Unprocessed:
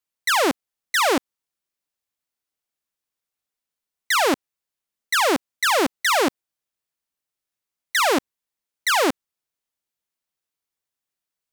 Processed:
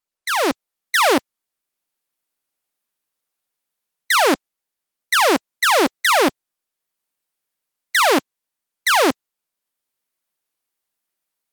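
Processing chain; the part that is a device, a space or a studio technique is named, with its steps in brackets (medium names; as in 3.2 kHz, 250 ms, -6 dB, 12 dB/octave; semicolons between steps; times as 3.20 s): video call (high-pass 170 Hz 12 dB/octave; level rider gain up to 9 dB; trim -2 dB; Opus 32 kbps 48 kHz)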